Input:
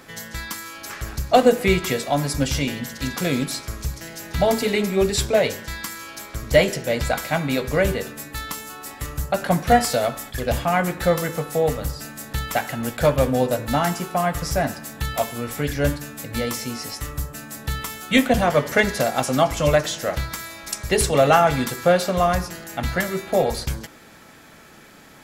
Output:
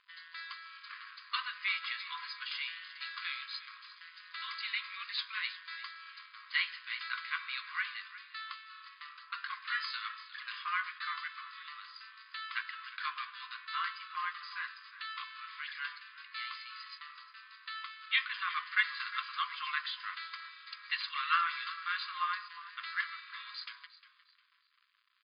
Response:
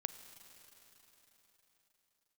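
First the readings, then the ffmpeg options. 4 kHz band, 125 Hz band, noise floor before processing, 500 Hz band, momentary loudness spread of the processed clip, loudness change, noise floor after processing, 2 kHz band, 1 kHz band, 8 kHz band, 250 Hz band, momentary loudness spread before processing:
-9.0 dB, under -40 dB, -46 dBFS, under -40 dB, 14 LU, -15.5 dB, -64 dBFS, -8.5 dB, -15.5 dB, under -40 dB, under -40 dB, 14 LU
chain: -filter_complex "[0:a]aeval=exprs='sgn(val(0))*max(abs(val(0))-0.0075,0)':c=same,asplit=4[a][b][c][d];[b]adelay=355,afreqshift=-35,volume=-16dB[e];[c]adelay=710,afreqshift=-70,volume=-25.1dB[f];[d]adelay=1065,afreqshift=-105,volume=-34.2dB[g];[a][e][f][g]amix=inputs=4:normalize=0,afftfilt=real='re*between(b*sr/4096,1000,5000)':imag='im*between(b*sr/4096,1000,5000)':win_size=4096:overlap=0.75,volume=-8dB"

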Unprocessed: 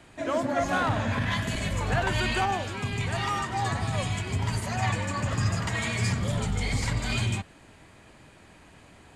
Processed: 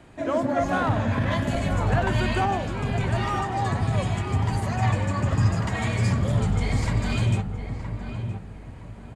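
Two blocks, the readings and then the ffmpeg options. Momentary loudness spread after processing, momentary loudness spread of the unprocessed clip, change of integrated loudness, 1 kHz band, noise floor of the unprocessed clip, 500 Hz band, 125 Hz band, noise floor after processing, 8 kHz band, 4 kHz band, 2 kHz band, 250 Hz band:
10 LU, 4 LU, +3.0 dB, +2.5 dB, -53 dBFS, +4.0 dB, +5.5 dB, -40 dBFS, -4.0 dB, -3.0 dB, -1.0 dB, +5.0 dB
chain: -filter_complex "[0:a]tiltshelf=f=1.4k:g=4.5,asplit=2[a][b];[b]adelay=968,lowpass=f=1.5k:p=1,volume=-7.5dB,asplit=2[c][d];[d]adelay=968,lowpass=f=1.5k:p=1,volume=0.35,asplit=2[e][f];[f]adelay=968,lowpass=f=1.5k:p=1,volume=0.35,asplit=2[g][h];[h]adelay=968,lowpass=f=1.5k:p=1,volume=0.35[i];[a][c][e][g][i]amix=inputs=5:normalize=0"

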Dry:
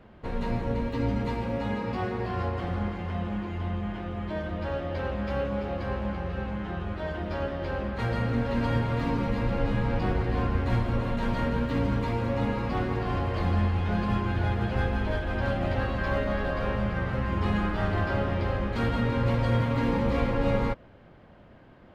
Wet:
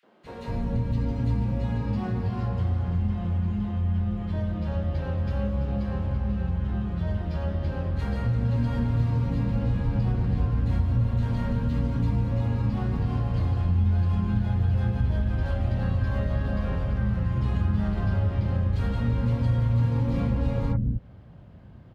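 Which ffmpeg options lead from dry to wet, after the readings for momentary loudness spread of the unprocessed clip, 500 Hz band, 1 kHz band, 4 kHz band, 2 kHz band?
6 LU, -6.5 dB, -7.0 dB, n/a, -8.5 dB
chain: -filter_complex "[0:a]highpass=50,bass=f=250:g=14,treble=f=4k:g=4,acrossover=split=310|1900[a][b][c];[b]adelay=30[d];[a]adelay=240[e];[e][d][c]amix=inputs=3:normalize=0,acompressor=threshold=-20dB:ratio=2,volume=-3.5dB"

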